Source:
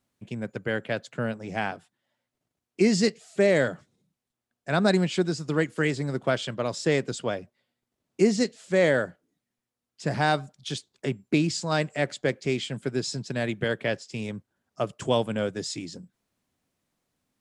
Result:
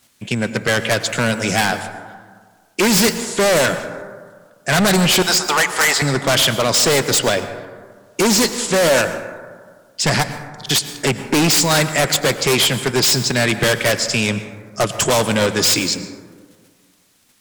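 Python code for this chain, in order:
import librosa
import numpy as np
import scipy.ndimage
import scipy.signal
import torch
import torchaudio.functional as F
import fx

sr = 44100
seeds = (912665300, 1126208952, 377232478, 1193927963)

p1 = fx.high_shelf(x, sr, hz=6700.0, db=12.0, at=(1.09, 1.65))
p2 = fx.highpass_res(p1, sr, hz=810.0, q=4.4, at=(5.22, 6.02))
p3 = fx.level_steps(p2, sr, step_db=13)
p4 = p2 + (p3 * librosa.db_to_amplitude(1.0))
p5 = np.clip(p4, -10.0 ** (-21.0 / 20.0), 10.0 ** (-21.0 / 20.0))
p6 = fx.tilt_shelf(p5, sr, db=-7.0, hz=1300.0)
p7 = fx.fold_sine(p6, sr, drive_db=12, ceiling_db=-11.0)
p8 = fx.gate_flip(p7, sr, shuts_db=-18.0, range_db=-34, at=(10.22, 10.69), fade=0.02)
p9 = p8 + fx.echo_single(p8, sr, ms=91, db=-24.0, dry=0)
y = fx.rev_plate(p9, sr, seeds[0], rt60_s=1.7, hf_ratio=0.3, predelay_ms=95, drr_db=10.5)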